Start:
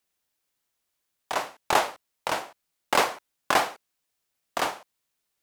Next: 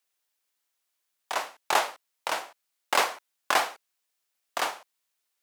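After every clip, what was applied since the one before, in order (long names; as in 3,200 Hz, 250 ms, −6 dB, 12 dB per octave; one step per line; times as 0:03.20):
high-pass filter 670 Hz 6 dB per octave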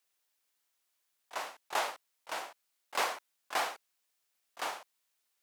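volume swells 189 ms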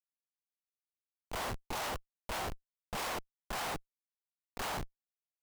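comparator with hysteresis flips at −45 dBFS
level +4 dB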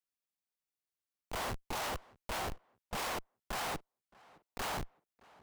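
tape delay 617 ms, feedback 33%, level −22 dB, low-pass 2,400 Hz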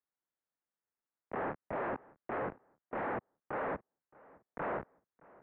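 single-sideband voice off tune −240 Hz 370–2,100 Hz
level +3 dB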